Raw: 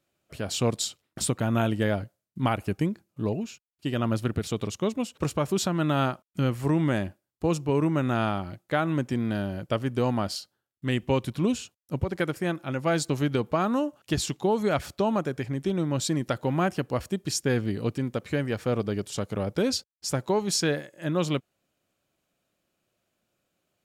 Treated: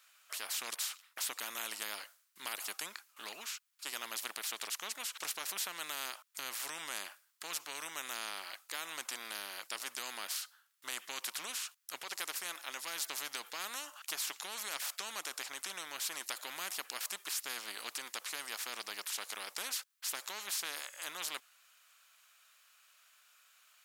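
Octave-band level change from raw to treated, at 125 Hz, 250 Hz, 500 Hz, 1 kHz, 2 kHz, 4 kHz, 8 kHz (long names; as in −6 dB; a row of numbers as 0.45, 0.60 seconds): below −40 dB, −33.5 dB, −25.0 dB, −13.5 dB, −6.0 dB, −3.5 dB, −3.0 dB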